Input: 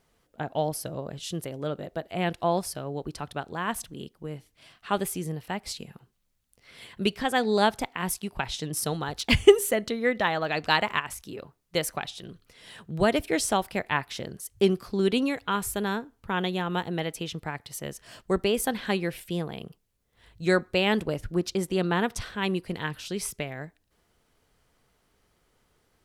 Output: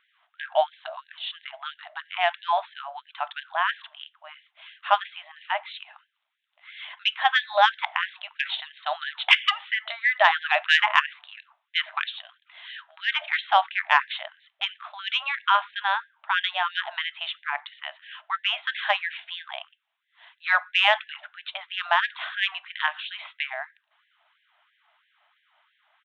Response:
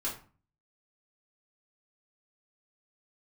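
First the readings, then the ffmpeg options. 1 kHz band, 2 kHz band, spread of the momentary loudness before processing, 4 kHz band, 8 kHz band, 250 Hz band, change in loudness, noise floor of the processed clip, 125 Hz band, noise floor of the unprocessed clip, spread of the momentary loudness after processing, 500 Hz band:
+6.0 dB, +8.0 dB, 15 LU, +6.5 dB, under -20 dB, under -40 dB, +3.0 dB, -75 dBFS, under -40 dB, -71 dBFS, 20 LU, -7.0 dB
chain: -filter_complex "[0:a]aresample=8000,aresample=44100,acontrast=41,asplit=2[a][b];[1:a]atrim=start_sample=2205,highshelf=f=4.1k:g=-10[c];[b][c]afir=irnorm=-1:irlink=0,volume=-17.5dB[d];[a][d]amix=inputs=2:normalize=0,afftfilt=real='re*gte(b*sr/1024,560*pow(1600/560,0.5+0.5*sin(2*PI*3*pts/sr)))':imag='im*gte(b*sr/1024,560*pow(1600/560,0.5+0.5*sin(2*PI*3*pts/sr)))':win_size=1024:overlap=0.75,volume=2.5dB"

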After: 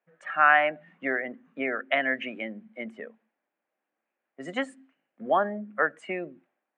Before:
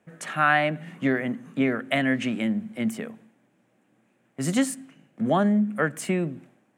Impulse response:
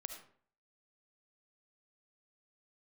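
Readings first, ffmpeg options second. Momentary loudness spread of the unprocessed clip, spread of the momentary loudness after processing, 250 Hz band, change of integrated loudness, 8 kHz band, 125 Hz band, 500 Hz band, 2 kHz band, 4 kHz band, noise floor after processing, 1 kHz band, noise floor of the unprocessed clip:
11 LU, 19 LU, -12.5 dB, -1.5 dB, under -20 dB, -19.0 dB, -1.5 dB, +1.5 dB, -4.0 dB, under -85 dBFS, +1.5 dB, -67 dBFS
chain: -af "afftdn=nr=15:nf=-34,highpass=590,lowpass=2.6k,volume=2.5dB"

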